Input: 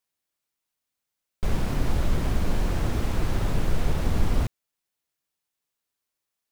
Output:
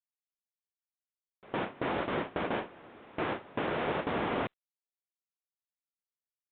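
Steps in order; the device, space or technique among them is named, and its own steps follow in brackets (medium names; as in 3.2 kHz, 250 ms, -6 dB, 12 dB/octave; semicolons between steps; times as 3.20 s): gate with hold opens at -13 dBFS; telephone (band-pass 360–3000 Hz; trim +4.5 dB; µ-law 64 kbps 8 kHz)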